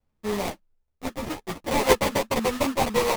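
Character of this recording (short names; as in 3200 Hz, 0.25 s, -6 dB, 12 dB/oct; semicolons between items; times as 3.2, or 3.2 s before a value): aliases and images of a low sample rate 1500 Hz, jitter 20%; a shimmering, thickened sound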